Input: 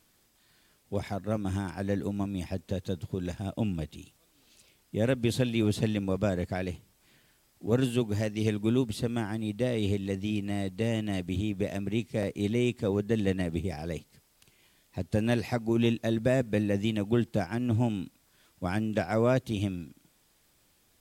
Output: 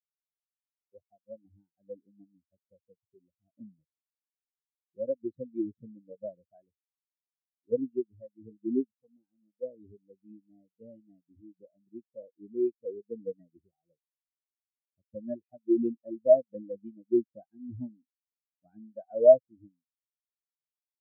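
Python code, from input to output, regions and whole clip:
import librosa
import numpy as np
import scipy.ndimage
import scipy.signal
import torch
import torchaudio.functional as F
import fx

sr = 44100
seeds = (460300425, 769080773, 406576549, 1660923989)

y = fx.chain(x, sr, fx.highpass(hz=95.0, slope=6),
    fx.transformer_sat(knee_hz=690.0), at=(8.84, 9.63))
y = fx.bass_treble(y, sr, bass_db=-8, treble_db=-2)
y = fx.notch(y, sr, hz=430.0, q=12.0)
y = fx.spectral_expand(y, sr, expansion=4.0)
y = F.gain(torch.from_numpy(y), 7.5).numpy()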